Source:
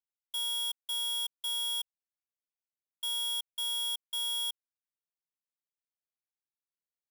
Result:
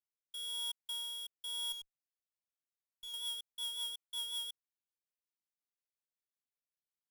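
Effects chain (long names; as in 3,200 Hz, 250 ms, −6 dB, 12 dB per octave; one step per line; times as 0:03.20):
rotating-speaker cabinet horn 1 Hz, later 5.5 Hz, at 0:01.57
0:01.72–0:03.14: tube saturation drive 39 dB, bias 0.25
level −4.5 dB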